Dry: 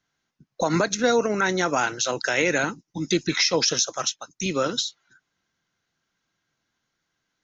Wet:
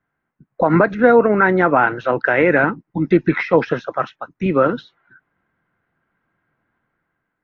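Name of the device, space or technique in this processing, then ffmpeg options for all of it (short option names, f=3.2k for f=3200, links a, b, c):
action camera in a waterproof case: -af "lowpass=f=1.9k:w=0.5412,lowpass=f=1.9k:w=1.3066,dynaudnorm=f=160:g=7:m=5.5dB,volume=4dB" -ar 24000 -c:a aac -b:a 64k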